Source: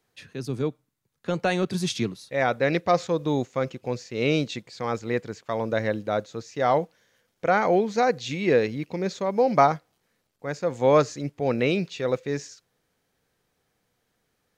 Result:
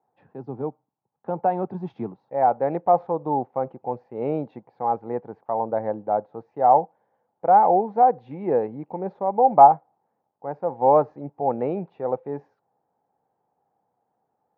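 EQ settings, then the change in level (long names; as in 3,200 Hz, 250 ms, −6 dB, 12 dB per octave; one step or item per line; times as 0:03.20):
high-pass filter 130 Hz
low-pass with resonance 830 Hz, resonance Q 7.9
high-frequency loss of the air 130 metres
−4.0 dB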